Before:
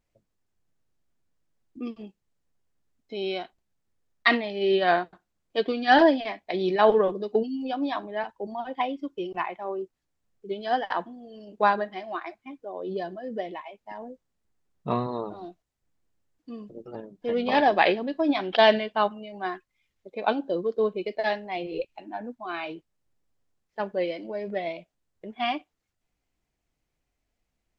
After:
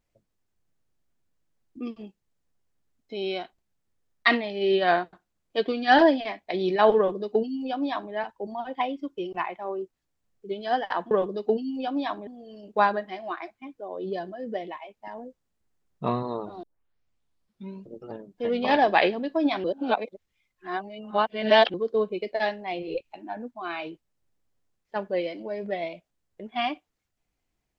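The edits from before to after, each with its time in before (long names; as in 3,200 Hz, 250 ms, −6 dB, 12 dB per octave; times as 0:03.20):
0:06.97–0:08.13: duplicate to 0:11.11
0:15.47: tape start 1.26 s
0:18.48–0:20.58: reverse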